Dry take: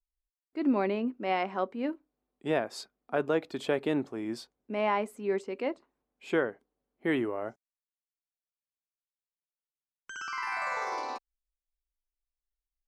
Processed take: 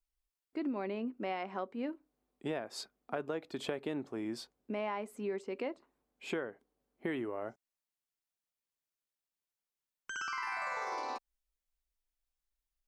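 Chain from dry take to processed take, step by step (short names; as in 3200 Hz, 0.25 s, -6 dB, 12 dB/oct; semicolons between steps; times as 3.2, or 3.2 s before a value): compressor 4:1, threshold -37 dBFS, peak gain reduction 13 dB; gain +1.5 dB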